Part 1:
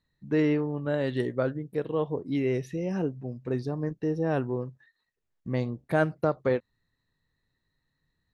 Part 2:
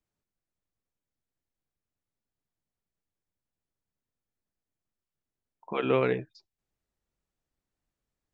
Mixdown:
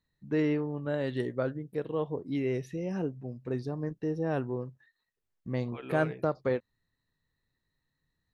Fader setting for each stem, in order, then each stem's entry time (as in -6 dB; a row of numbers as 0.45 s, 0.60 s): -3.5 dB, -14.0 dB; 0.00 s, 0.00 s